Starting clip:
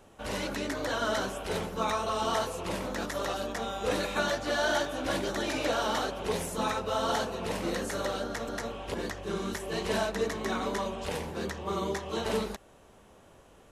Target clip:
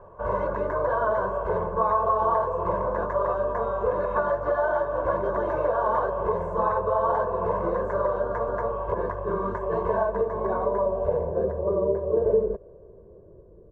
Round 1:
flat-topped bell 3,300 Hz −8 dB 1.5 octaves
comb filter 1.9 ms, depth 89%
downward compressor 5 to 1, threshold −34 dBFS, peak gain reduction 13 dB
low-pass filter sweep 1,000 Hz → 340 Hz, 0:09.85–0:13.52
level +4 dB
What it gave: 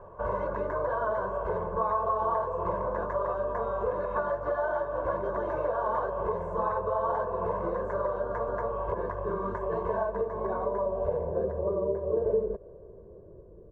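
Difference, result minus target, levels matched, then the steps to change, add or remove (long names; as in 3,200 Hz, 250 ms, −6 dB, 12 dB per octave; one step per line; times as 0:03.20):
downward compressor: peak gain reduction +5 dB
change: downward compressor 5 to 1, threshold −27.5 dBFS, peak gain reduction 7.5 dB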